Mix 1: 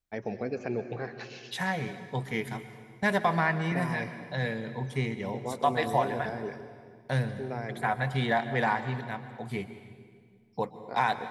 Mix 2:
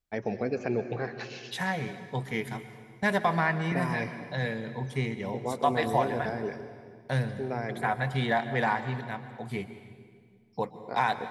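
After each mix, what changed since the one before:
first voice +3.0 dB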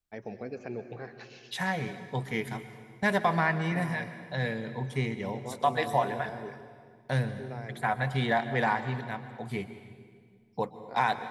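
first voice −8.5 dB

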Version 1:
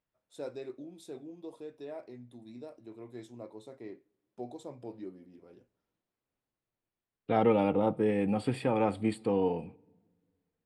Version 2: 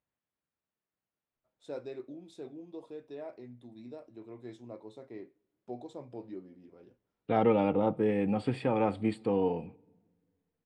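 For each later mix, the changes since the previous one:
first voice: entry +1.30 s
master: add high-frequency loss of the air 71 metres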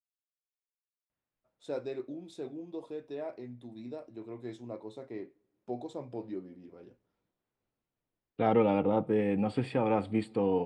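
first voice +4.0 dB
second voice: entry +1.10 s

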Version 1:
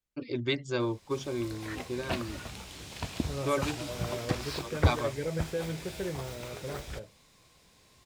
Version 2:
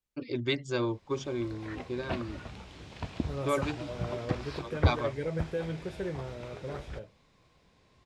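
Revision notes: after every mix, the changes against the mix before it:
background: add head-to-tape spacing loss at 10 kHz 20 dB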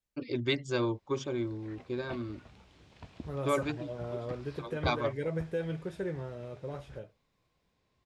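background −11.5 dB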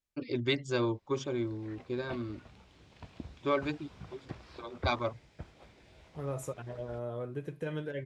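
second voice: entry +2.90 s

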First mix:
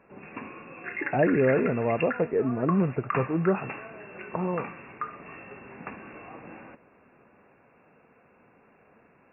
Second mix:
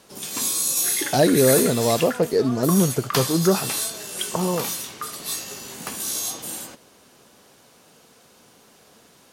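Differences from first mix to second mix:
speech +5.5 dB
first sound +4.0 dB
master: remove linear-phase brick-wall low-pass 2,800 Hz

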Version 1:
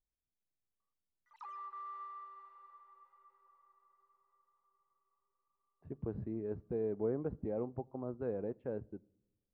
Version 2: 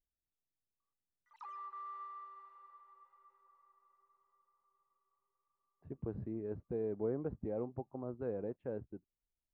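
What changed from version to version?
reverb: off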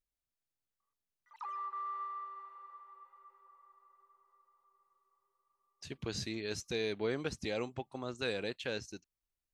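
speech: remove Bessel low-pass filter 650 Hz, order 4
background +6.5 dB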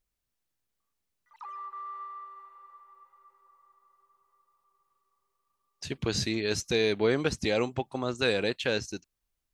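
speech +9.5 dB

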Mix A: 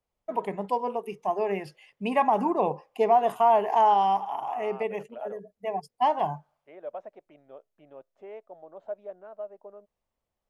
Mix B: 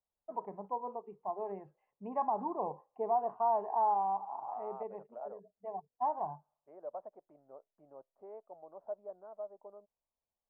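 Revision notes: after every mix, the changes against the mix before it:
first voice −6.0 dB
master: add transistor ladder low-pass 1,200 Hz, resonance 40%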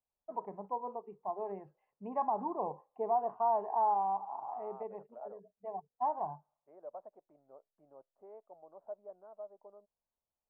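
second voice −3.5 dB

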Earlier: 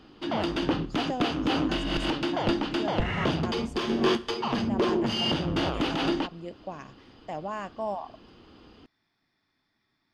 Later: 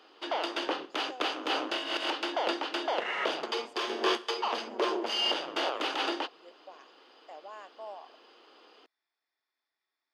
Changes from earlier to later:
speech −11.0 dB
master: add high-pass filter 430 Hz 24 dB per octave

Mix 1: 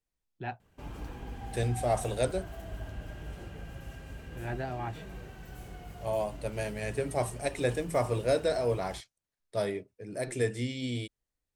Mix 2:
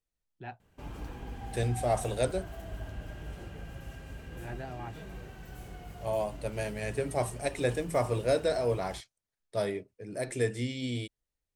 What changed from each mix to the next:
first voice −5.5 dB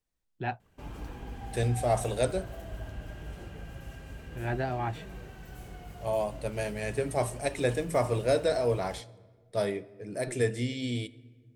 first voice +10.0 dB
reverb: on, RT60 1.6 s

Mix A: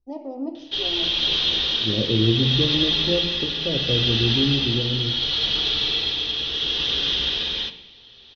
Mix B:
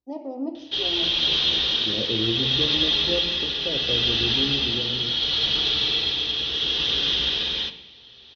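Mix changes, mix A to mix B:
second voice: add spectral tilt +3.5 dB per octave
master: add high-pass filter 42 Hz

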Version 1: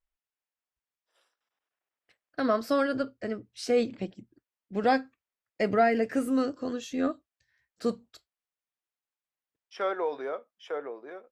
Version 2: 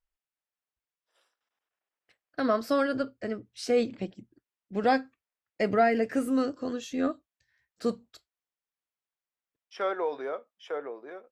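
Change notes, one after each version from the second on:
nothing changed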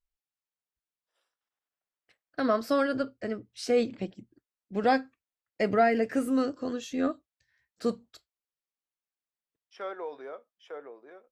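second voice −7.5 dB

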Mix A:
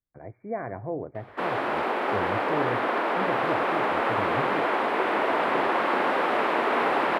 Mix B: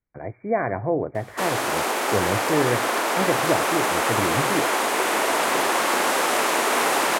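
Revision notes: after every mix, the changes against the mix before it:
speech +7.5 dB
master: remove high-frequency loss of the air 450 metres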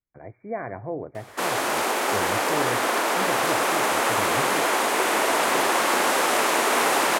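speech −8.0 dB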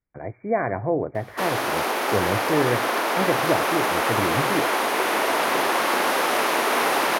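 speech +8.0 dB
master: add parametric band 7,700 Hz −10.5 dB 0.45 octaves

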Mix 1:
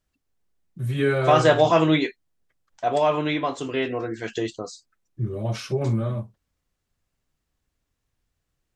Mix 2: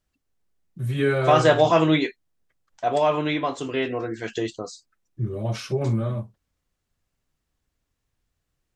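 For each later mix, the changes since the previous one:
nothing changed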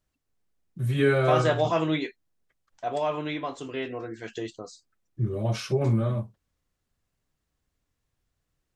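second voice −7.0 dB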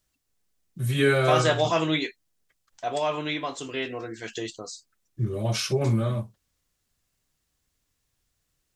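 master: add high-shelf EQ 2,600 Hz +11 dB

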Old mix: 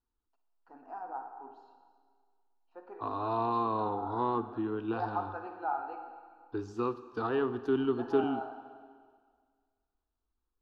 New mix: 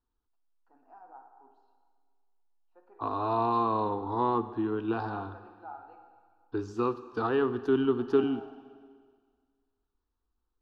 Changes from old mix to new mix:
first voice −10.5 dB
second voice +3.5 dB

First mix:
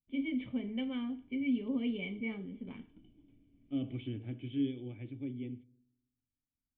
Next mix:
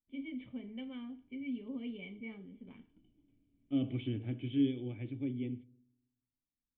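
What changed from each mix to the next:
first voice −7.5 dB
second voice +3.0 dB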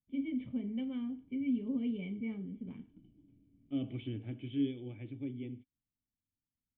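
first voice: add parametric band 150 Hz +12 dB 2.9 octaves
reverb: off

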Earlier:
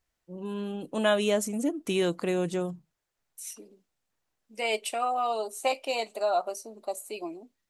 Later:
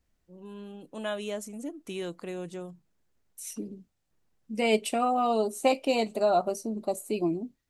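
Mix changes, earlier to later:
first voice −9.0 dB
second voice: remove high-pass filter 600 Hz 12 dB per octave

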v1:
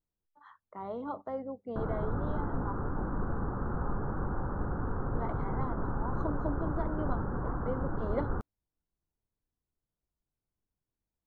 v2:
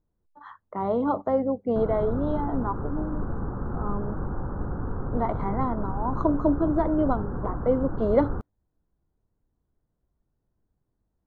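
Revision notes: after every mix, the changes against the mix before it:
speech +11.5 dB
master: add tilt shelving filter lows +3.5 dB, about 920 Hz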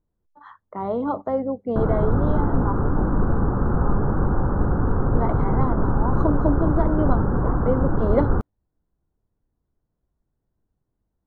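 background +10.0 dB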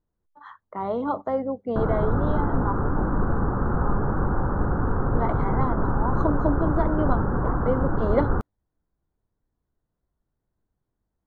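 master: add tilt shelving filter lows −3.5 dB, about 920 Hz

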